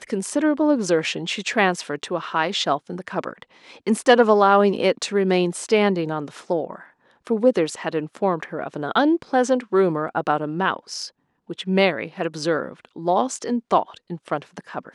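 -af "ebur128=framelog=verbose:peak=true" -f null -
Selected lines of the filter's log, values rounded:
Integrated loudness:
  I:         -21.7 LUFS
  Threshold: -32.2 LUFS
Loudness range:
  LRA:         4.9 LU
  Threshold: -42.0 LUFS
  LRA low:   -24.2 LUFS
  LRA high:  -19.4 LUFS
True peak:
  Peak:       -2.8 dBFS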